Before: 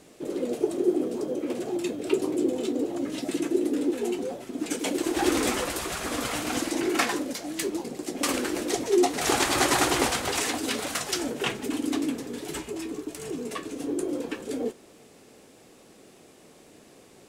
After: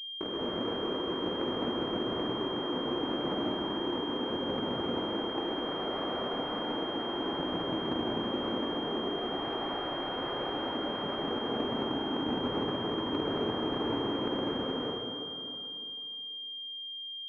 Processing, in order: Schmitt trigger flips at -31.5 dBFS; high-pass 220 Hz 12 dB/octave; compressor with a negative ratio -35 dBFS, ratio -1; reverberation RT60 2.8 s, pre-delay 116 ms, DRR -4.5 dB; class-D stage that switches slowly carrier 3.2 kHz; trim -3.5 dB

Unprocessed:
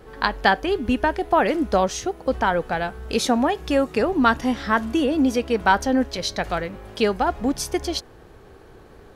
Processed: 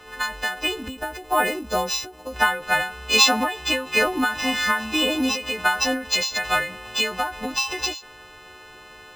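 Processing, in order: partials quantised in pitch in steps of 3 st; careless resampling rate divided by 4×, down none, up hold; peaking EQ 2.3 kHz +11 dB 2.8 oct, from 0.88 s +4 dB, from 2.36 s +13.5 dB; endings held to a fixed fall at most 120 dB/s; trim -5.5 dB

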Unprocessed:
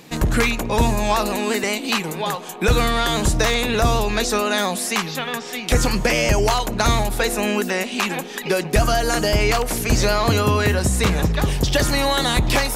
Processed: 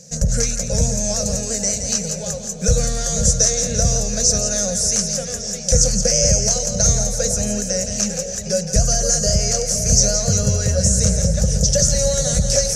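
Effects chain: FFT filter 200 Hz 0 dB, 320 Hz -29 dB, 530 Hz +4 dB, 1 kHz -28 dB, 1.5 kHz -12 dB, 2.3 kHz -18 dB, 3.6 kHz -16 dB, 6 kHz +15 dB, 14 kHz -17 dB; two-band feedback delay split 860 Hz, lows 506 ms, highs 171 ms, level -7.5 dB; trim +1.5 dB

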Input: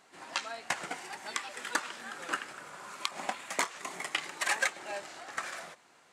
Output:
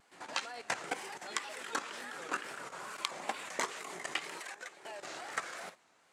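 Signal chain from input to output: dynamic bell 430 Hz, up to +6 dB, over -58 dBFS, Q 2.7; 4.29–5.04 s: compression 8:1, threshold -38 dBFS, peak gain reduction 14 dB; hum notches 50/100/150/200/250/300/350/400 Hz; level held to a coarse grid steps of 12 dB; wow and flutter 110 cents; trim +3.5 dB

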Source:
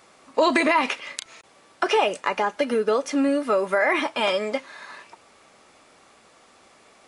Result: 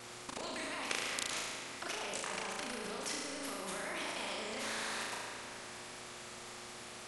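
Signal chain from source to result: compressor with a negative ratio -26 dBFS, ratio -0.5; vibrato 9.6 Hz 92 cents; level held to a coarse grid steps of 21 dB; mains buzz 120 Hz, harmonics 4, -64 dBFS 0 dB/octave; flutter echo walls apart 6.2 m, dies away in 0.79 s; on a send at -10 dB: reverberation RT60 2.9 s, pre-delay 77 ms; on the sum: spectrum-flattening compressor 2:1

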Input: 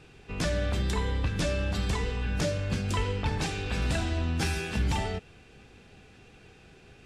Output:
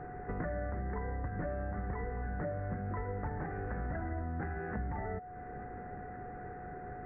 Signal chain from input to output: compression 5:1, threshold -44 dBFS, peak gain reduction 18 dB; rippled Chebyshev low-pass 2 kHz, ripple 3 dB; whistle 730 Hz -55 dBFS; trim +9.5 dB

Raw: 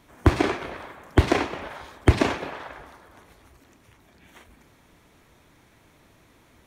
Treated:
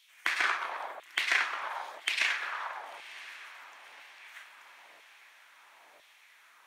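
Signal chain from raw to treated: LFO high-pass saw down 1 Hz 590–3200 Hz; echo that smears into a reverb 1035 ms, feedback 50%, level -16 dB; trim -2.5 dB

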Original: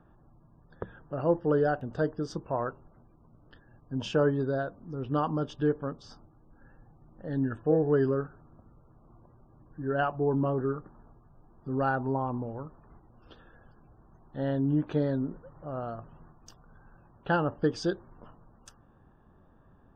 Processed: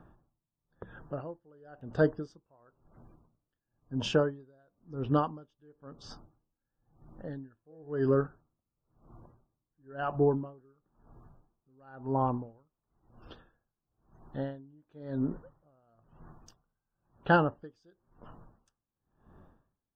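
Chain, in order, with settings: logarithmic tremolo 0.98 Hz, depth 37 dB; trim +3.5 dB

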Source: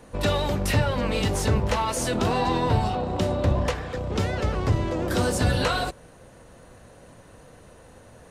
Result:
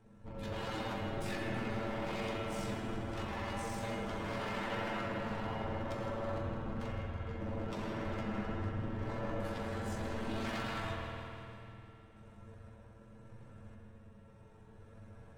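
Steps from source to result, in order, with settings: tone controls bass +10 dB, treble -8 dB; hum notches 50/100/150 Hz; peak limiter -13.5 dBFS, peak gain reduction 9 dB; random-step tremolo; wavefolder -25 dBFS; feedback comb 210 Hz, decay 0.33 s, harmonics odd, mix 80%; granular stretch 1.7×, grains 40 ms; feedback echo behind a high-pass 149 ms, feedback 65%, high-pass 1.5 kHz, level -10.5 dB; reverberation RT60 2.5 s, pre-delay 60 ms, DRR -2 dB; speed mistake 48 kHz file played as 44.1 kHz; trim +1 dB

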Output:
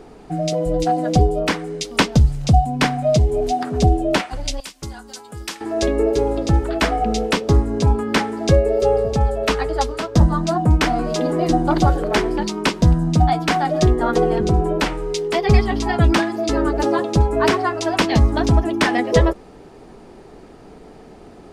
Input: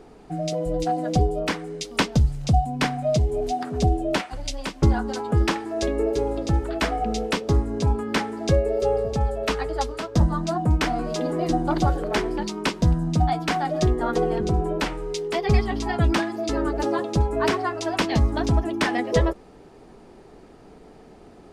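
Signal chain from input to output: 4.60–5.61 s: pre-emphasis filter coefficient 0.9; trim +5.5 dB

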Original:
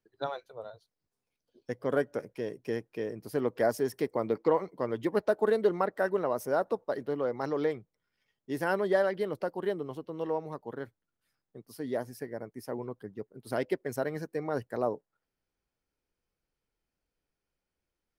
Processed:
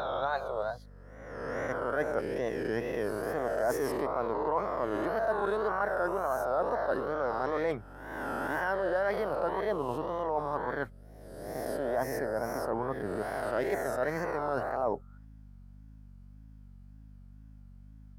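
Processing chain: reverse spectral sustain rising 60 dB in 1.18 s; high-order bell 1 kHz +8 dB; reverse; compression 6:1, threshold -32 dBFS, peak gain reduction 17.5 dB; reverse; hum 50 Hz, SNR 18 dB; wow and flutter 120 cents; trim +4 dB

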